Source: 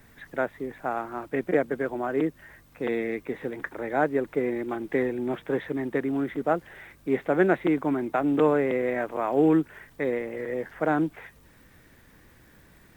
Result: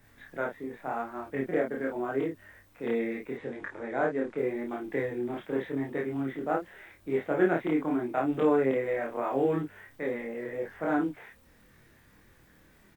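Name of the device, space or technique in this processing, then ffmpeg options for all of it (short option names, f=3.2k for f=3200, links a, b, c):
double-tracked vocal: -filter_complex "[0:a]asplit=2[a][b];[b]adelay=30,volume=-2.5dB[c];[a][c]amix=inputs=2:normalize=0,flanger=delay=20:depth=6.3:speed=0.83,asettb=1/sr,asplit=3[d][e][f];[d]atrim=end=3.374[g];[e]atrim=start=3.37:end=4.38,asetpts=PTS-STARTPTS,afade=t=in:d=0.004:c=qsin,afade=t=out:st=1.006:d=0.004:c=qsin,lowpass=f=8.8k:w=0.5412,lowpass=f=8.8k:w=1.3066[h];[f]atrim=start=4.376[i];[g][h]acrossfade=d=0.004:c1=hsin:c2=qsin[j];[j][i]acrossfade=d=0.004:c1=qsin:c2=hsin,volume=-3dB"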